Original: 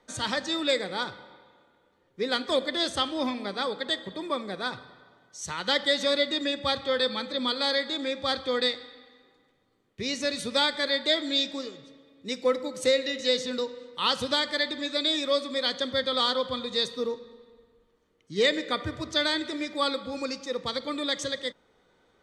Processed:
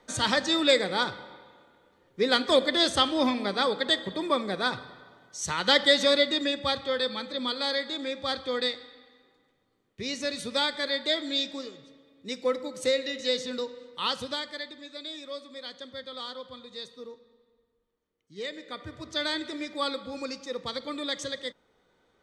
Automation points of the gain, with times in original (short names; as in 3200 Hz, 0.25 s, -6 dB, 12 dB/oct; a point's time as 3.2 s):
5.91 s +4 dB
7.01 s -2.5 dB
14 s -2.5 dB
14.83 s -13 dB
18.52 s -13 dB
19.31 s -3 dB